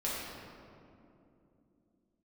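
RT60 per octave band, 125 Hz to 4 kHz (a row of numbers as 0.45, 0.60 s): 3.4, 3.9, 3.2, 2.4, 1.8, 1.3 s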